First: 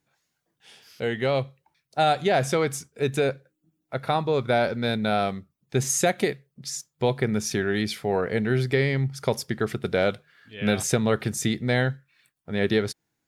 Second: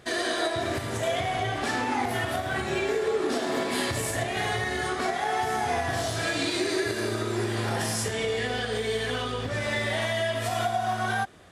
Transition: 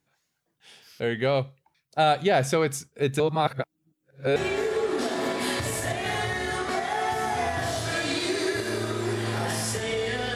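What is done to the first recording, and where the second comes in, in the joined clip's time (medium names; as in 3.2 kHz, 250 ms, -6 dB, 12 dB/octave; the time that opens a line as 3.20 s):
first
3.20–4.36 s: reverse
4.36 s: go over to second from 2.67 s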